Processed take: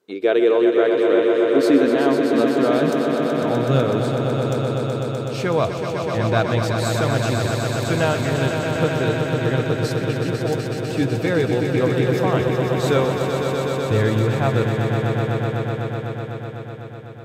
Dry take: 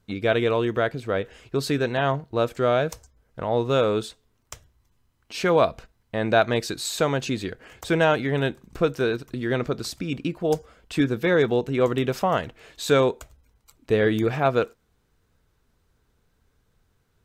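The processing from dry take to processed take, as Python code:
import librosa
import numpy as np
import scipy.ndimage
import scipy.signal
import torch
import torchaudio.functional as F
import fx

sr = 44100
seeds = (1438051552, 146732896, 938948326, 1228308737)

y = fx.filter_sweep_highpass(x, sr, from_hz=380.0, to_hz=100.0, start_s=0.73, end_s=4.67, q=4.9)
y = fx.echo_swell(y, sr, ms=125, loudest=5, wet_db=-7.0)
y = y * librosa.db_to_amplitude(-2.0)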